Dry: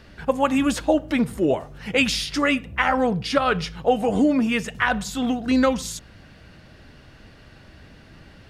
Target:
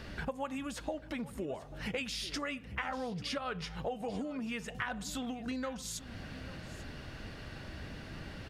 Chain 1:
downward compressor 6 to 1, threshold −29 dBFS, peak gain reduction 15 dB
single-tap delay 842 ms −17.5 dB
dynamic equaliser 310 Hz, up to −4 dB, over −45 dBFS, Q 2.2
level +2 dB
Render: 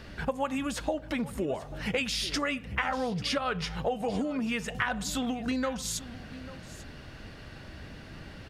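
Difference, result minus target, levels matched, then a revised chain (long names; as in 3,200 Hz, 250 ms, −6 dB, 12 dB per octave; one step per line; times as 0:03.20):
downward compressor: peak gain reduction −7.5 dB
downward compressor 6 to 1, threshold −38 dBFS, peak gain reduction 22.5 dB
single-tap delay 842 ms −17.5 dB
dynamic equaliser 310 Hz, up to −4 dB, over −45 dBFS, Q 2.2
level +2 dB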